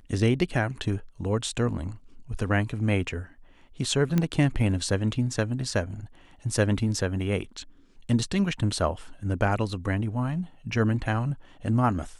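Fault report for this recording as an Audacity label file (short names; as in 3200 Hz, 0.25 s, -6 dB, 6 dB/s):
4.180000	4.180000	pop -12 dBFS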